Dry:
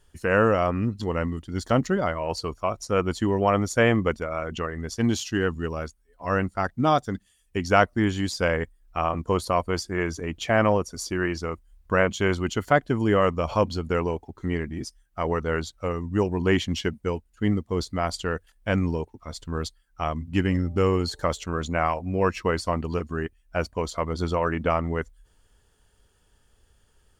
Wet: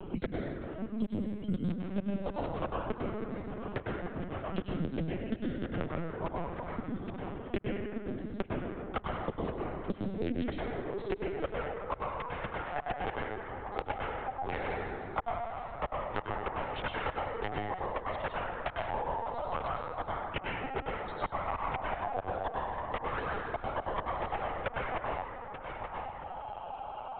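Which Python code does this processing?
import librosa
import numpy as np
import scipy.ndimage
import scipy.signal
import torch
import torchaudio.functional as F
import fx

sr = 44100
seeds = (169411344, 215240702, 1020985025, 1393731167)

p1 = fx.wiener(x, sr, points=25)
p2 = fx.low_shelf(p1, sr, hz=190.0, db=-9.5)
p3 = fx.filter_sweep_highpass(p2, sr, from_hz=180.0, to_hz=770.0, start_s=10.13, end_s=11.71, q=6.8)
p4 = fx.over_compress(p3, sr, threshold_db=-21.0, ratio=-0.5)
p5 = fx.cheby_harmonics(p4, sr, harmonics=(3, 6), levels_db=(-43, -20), full_scale_db=-4.0)
p6 = fx.gate_flip(p5, sr, shuts_db=-14.0, range_db=-40)
p7 = p6 + fx.echo_single(p6, sr, ms=885, db=-23.0, dry=0)
p8 = fx.rev_plate(p7, sr, seeds[0], rt60_s=1.3, hf_ratio=0.6, predelay_ms=85, drr_db=-3.0)
p9 = fx.lpc_vocoder(p8, sr, seeds[1], excitation='pitch_kept', order=16)
p10 = fx.band_squash(p9, sr, depth_pct=100)
y = p10 * 10.0 ** (-3.5 / 20.0)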